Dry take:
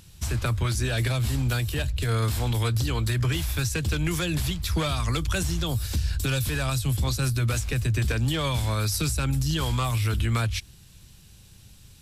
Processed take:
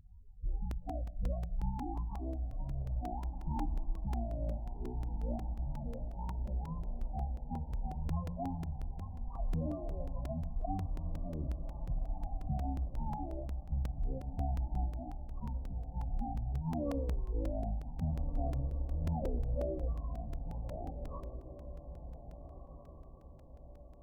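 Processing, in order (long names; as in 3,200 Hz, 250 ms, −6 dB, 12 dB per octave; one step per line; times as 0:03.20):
reverb reduction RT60 0.89 s
Butterworth low-pass 2,200 Hz 72 dB per octave
mains-hum notches 50/100/150/200/250/300/350/400/450 Hz
downward compressor, threshold −28 dBFS, peak gain reduction 7 dB
sample-and-hold tremolo
spectral peaks only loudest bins 16
feedback delay with all-pass diffusion 824 ms, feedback 44%, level −10 dB
on a send at −14 dB: convolution reverb RT60 0.55 s, pre-delay 3 ms
on the sum: wrong playback speed 15 ips tape played at 7.5 ips
regular buffer underruns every 0.18 s, samples 128, repeat, from 0:00.71
level −2 dB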